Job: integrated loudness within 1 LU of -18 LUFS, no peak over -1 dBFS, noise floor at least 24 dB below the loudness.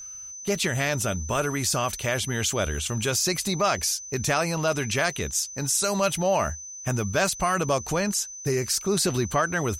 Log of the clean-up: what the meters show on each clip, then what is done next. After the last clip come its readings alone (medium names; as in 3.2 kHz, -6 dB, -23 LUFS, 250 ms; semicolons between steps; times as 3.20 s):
steady tone 6.1 kHz; tone level -37 dBFS; loudness -25.0 LUFS; peak level -10.5 dBFS; loudness target -18.0 LUFS
-> band-stop 6.1 kHz, Q 30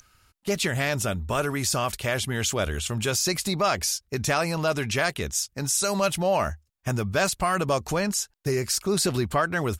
steady tone not found; loudness -25.5 LUFS; peak level -10.5 dBFS; loudness target -18.0 LUFS
-> trim +7.5 dB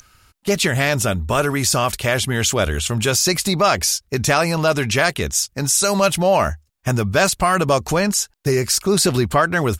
loudness -18.0 LUFS; peak level -3.0 dBFS; noise floor -63 dBFS